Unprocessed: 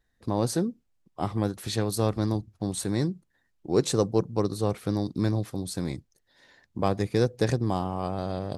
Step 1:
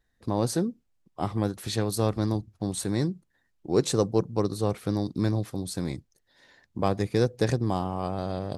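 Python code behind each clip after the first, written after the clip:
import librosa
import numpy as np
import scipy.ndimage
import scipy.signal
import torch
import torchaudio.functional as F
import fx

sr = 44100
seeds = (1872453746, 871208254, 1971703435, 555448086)

y = x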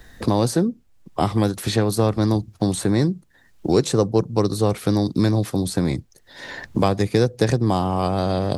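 y = fx.band_squash(x, sr, depth_pct=70)
y = F.gain(torch.from_numpy(y), 7.0).numpy()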